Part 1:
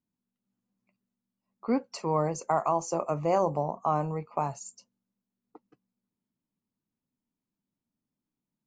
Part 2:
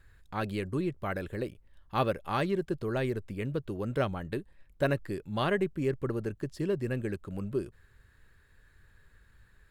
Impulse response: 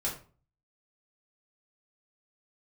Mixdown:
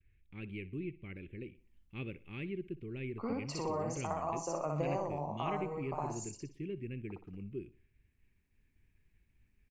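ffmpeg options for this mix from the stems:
-filter_complex "[0:a]acompressor=threshold=-32dB:ratio=4,adelay=1550,volume=2dB,asplit=2[a][b];[b]volume=-6.5dB[c];[1:a]agate=range=-33dB:threshold=-56dB:ratio=3:detection=peak,firequalizer=gain_entry='entry(360,0);entry(640,-22);entry(1600,-15);entry(2300,8);entry(4400,-21)':delay=0.05:min_phase=1,volume=-9dB,asplit=3[d][e][f];[e]volume=-18dB[g];[f]apad=whole_len=450617[h];[a][h]sidechaincompress=threshold=-45dB:ratio=8:attack=46:release=1280[i];[c][g]amix=inputs=2:normalize=0,aecho=0:1:61|122|183|244|305:1|0.38|0.144|0.0549|0.0209[j];[i][d][j]amix=inputs=3:normalize=0"

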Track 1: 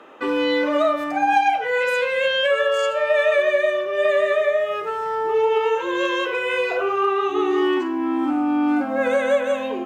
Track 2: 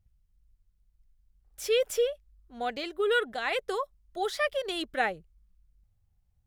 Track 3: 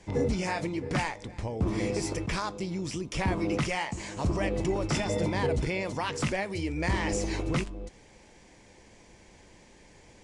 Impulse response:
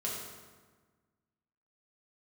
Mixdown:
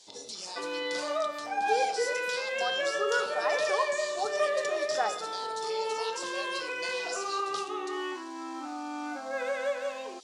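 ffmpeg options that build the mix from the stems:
-filter_complex "[0:a]adelay=350,volume=-10dB[a];[1:a]lowpass=f=1.1k:t=q:w=2.3,volume=-5dB,asplit=2[b][c];[c]volume=-10.5dB[d];[2:a]highshelf=f=2.9k:t=q:w=3:g=11,acrossover=split=1100|2600[e][f][g];[e]acompressor=threshold=-33dB:ratio=4[h];[f]acompressor=threshold=-53dB:ratio=4[i];[g]acompressor=threshold=-33dB:ratio=4[j];[h][i][j]amix=inputs=3:normalize=0,volume=-8.5dB,asplit=2[k][l];[l]volume=-8.5dB[m];[3:a]atrim=start_sample=2205[n];[d][m]amix=inputs=2:normalize=0[o];[o][n]afir=irnorm=-1:irlink=0[p];[a][b][k][p]amix=inputs=4:normalize=0,highpass=510"

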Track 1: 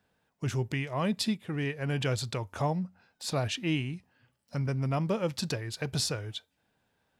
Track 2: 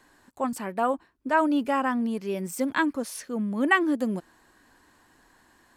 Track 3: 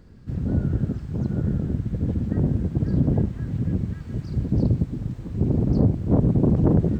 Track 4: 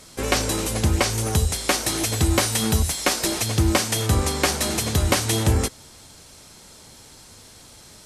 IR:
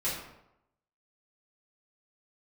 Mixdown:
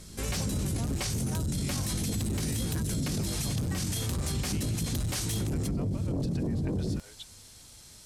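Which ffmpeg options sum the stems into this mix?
-filter_complex "[0:a]highpass=520,adelay=850,volume=-3dB[a];[1:a]volume=-7dB[b];[2:a]flanger=delay=18:depth=4.4:speed=0.39,tiltshelf=f=970:g=5,volume=-1.5dB[c];[3:a]lowshelf=f=170:g=11.5,asoftclip=type=hard:threshold=-12dB,volume=-13dB[d];[c][d]amix=inputs=2:normalize=0,highshelf=f=2.1k:g=10,alimiter=limit=-20.5dB:level=0:latency=1:release=10,volume=0dB[e];[a][b]amix=inputs=2:normalize=0,tremolo=f=7.2:d=0.77,acompressor=threshold=-41dB:ratio=6,volume=0dB[f];[e][f]amix=inputs=2:normalize=0,acompressor=threshold=-27dB:ratio=6"

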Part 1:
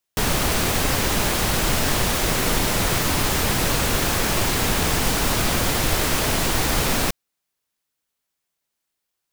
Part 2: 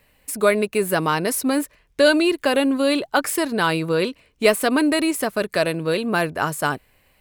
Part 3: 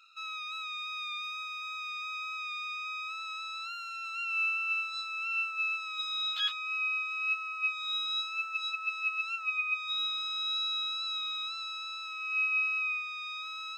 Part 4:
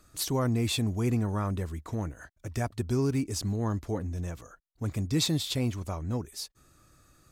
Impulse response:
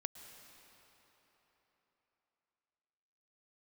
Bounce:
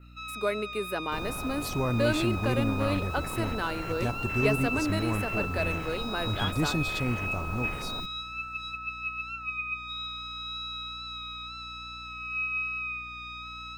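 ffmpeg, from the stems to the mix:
-filter_complex "[0:a]highshelf=f=2.9k:g=6,afwtdn=0.0794,adelay=950,volume=-16dB,asplit=2[a][b];[b]volume=-15.5dB[c];[1:a]highpass=f=200:w=0.5412,highpass=f=200:w=1.3066,volume=-12.5dB,asplit=2[d][e];[e]volume=-15dB[f];[2:a]aeval=exprs='val(0)+0.00282*(sin(2*PI*60*n/s)+sin(2*PI*2*60*n/s)/2+sin(2*PI*3*60*n/s)/3+sin(2*PI*4*60*n/s)/4+sin(2*PI*5*60*n/s)/5)':c=same,adynamicequalizer=threshold=0.0112:dfrequency=2300:dqfactor=0.7:tfrequency=2300:tqfactor=0.7:attack=5:release=100:ratio=0.375:range=2:mode=cutabove:tftype=highshelf,volume=2dB[g];[3:a]adelay=1450,volume=-1dB[h];[4:a]atrim=start_sample=2205[i];[c][f]amix=inputs=2:normalize=0[j];[j][i]afir=irnorm=-1:irlink=0[k];[a][d][g][h][k]amix=inputs=5:normalize=0,equalizer=f=8.9k:w=0.33:g=-6"

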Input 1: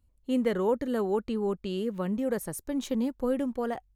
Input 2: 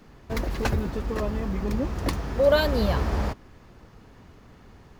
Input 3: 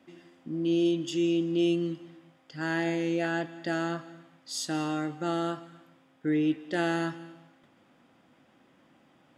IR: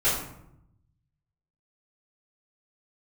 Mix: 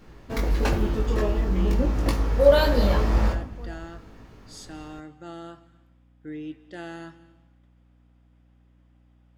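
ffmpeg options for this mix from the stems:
-filter_complex "[0:a]volume=-16dB[a];[1:a]flanger=delay=18.5:depth=2.9:speed=0.96,volume=2.5dB,asplit=2[b][c];[c]volume=-18.5dB[d];[2:a]aeval=exprs='val(0)+0.00447*(sin(2*PI*60*n/s)+sin(2*PI*2*60*n/s)/2+sin(2*PI*3*60*n/s)/3+sin(2*PI*4*60*n/s)/4+sin(2*PI*5*60*n/s)/5)':c=same,volume=-10dB[e];[3:a]atrim=start_sample=2205[f];[d][f]afir=irnorm=-1:irlink=0[g];[a][b][e][g]amix=inputs=4:normalize=0"

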